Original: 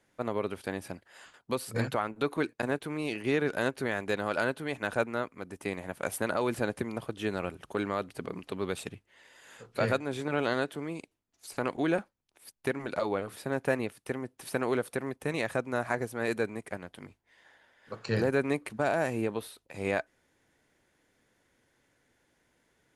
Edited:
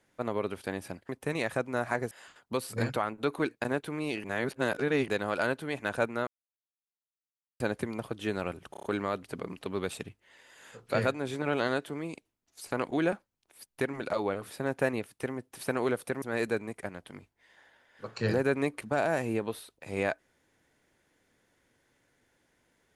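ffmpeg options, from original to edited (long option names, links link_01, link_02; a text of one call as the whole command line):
ffmpeg -i in.wav -filter_complex "[0:a]asplit=12[link_01][link_02][link_03][link_04][link_05][link_06][link_07][link_08][link_09][link_10][link_11][link_12];[link_01]atrim=end=1.092[link_13];[link_02]atrim=start=15.078:end=16.102[link_14];[link_03]atrim=start=1.088:end=3.222[link_15];[link_04]atrim=start=3.218:end=4.062,asetpts=PTS-STARTPTS,areverse[link_16];[link_05]atrim=start=4.058:end=5.25,asetpts=PTS-STARTPTS,afade=type=out:start_time=1.188:duration=0.004:curve=hsin[link_17];[link_06]atrim=start=5.25:end=6.58,asetpts=PTS-STARTPTS,volume=0[link_18];[link_07]atrim=start=6.58:end=7.722,asetpts=PTS-STARTPTS,afade=type=in:duration=0.004:curve=hsin[link_19];[link_08]atrim=start=7.688:end=7.722[link_20];[link_09]atrim=start=7.688:end=7.722[link_21];[link_10]atrim=start=7.688:end=7.722[link_22];[link_11]atrim=start=7.688:end=15.082[link_23];[link_12]atrim=start=16.098[link_24];[link_13][link_14]acrossfade=duration=0.004:curve1=hsin:curve2=hsin[link_25];[link_25][link_15]acrossfade=duration=0.004:curve1=hsin:curve2=hsin[link_26];[link_26][link_16]acrossfade=duration=0.004:curve1=hsin:curve2=hsin[link_27];[link_17][link_18][link_19]concat=n=3:v=0:a=1[link_28];[link_27][link_28]acrossfade=duration=0.004:curve1=hsin:curve2=hsin[link_29];[link_29][link_20]acrossfade=duration=0.004:curve1=hsin:curve2=hsin[link_30];[link_30][link_21]acrossfade=duration=0.004:curve1=hsin:curve2=hsin[link_31];[link_31][link_22]acrossfade=duration=0.004:curve1=hsin:curve2=hsin[link_32];[link_32][link_23]acrossfade=duration=0.004:curve1=hsin:curve2=hsin[link_33];[link_33][link_24]acrossfade=duration=0.004:curve1=hsin:curve2=hsin" out.wav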